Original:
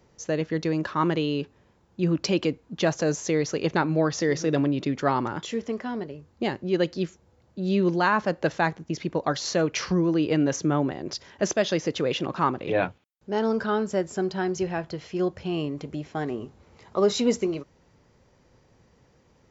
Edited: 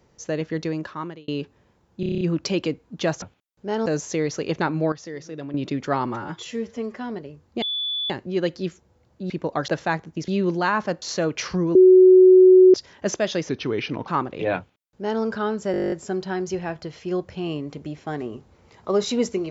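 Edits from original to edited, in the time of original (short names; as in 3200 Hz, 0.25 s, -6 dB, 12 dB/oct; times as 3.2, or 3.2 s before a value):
0.62–1.28 fade out
2 stutter 0.03 s, 8 plays
4.07–4.69 gain -11 dB
5.21–5.81 stretch 1.5×
6.47 add tone 3460 Hz -23.5 dBFS 0.48 s
7.67–8.41 swap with 9.01–9.39
10.12–11.11 bleep 371 Hz -7.5 dBFS
11.86–12.36 speed 85%
12.86–13.5 copy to 3.01
14 stutter 0.02 s, 11 plays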